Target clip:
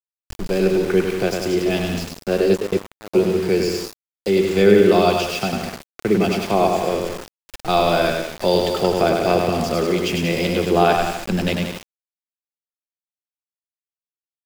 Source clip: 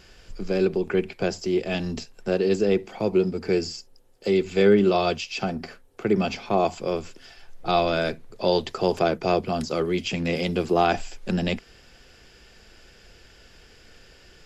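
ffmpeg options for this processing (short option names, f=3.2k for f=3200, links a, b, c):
-filter_complex "[0:a]aecho=1:1:100|180|244|295.2|336.2:0.631|0.398|0.251|0.158|0.1,asplit=3[a][b][c];[a]afade=t=out:st=2.53:d=0.02[d];[b]agate=range=-15dB:threshold=-17dB:ratio=16:detection=peak,afade=t=in:st=2.53:d=0.02,afade=t=out:st=3.13:d=0.02[e];[c]afade=t=in:st=3.13:d=0.02[f];[d][e][f]amix=inputs=3:normalize=0,aeval=exprs='val(0)*gte(abs(val(0)),0.0266)':c=same,volume=3.5dB"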